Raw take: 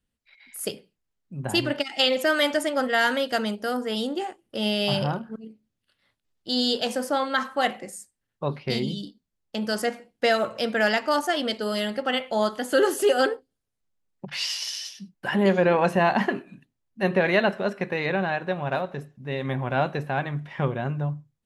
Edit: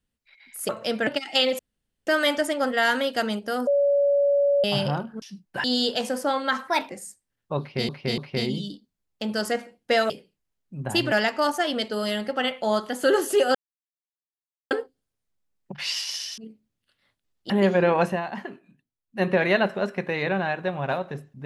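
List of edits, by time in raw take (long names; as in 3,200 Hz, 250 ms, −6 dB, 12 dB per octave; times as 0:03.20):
0:00.69–0:01.71: swap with 0:10.43–0:10.81
0:02.23: splice in room tone 0.48 s
0:03.83–0:04.80: beep over 567 Hz −17 dBFS
0:05.38–0:06.50: swap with 0:14.91–0:15.33
0:07.54–0:07.81: play speed 124%
0:08.51–0:08.80: repeat, 3 plays
0:13.24: splice in silence 1.16 s
0:15.88–0:17.06: duck −11 dB, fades 0.17 s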